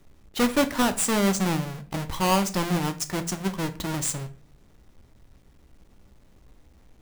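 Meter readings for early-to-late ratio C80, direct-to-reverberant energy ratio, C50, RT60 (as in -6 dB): 20.0 dB, 9.0 dB, 15.5 dB, 0.40 s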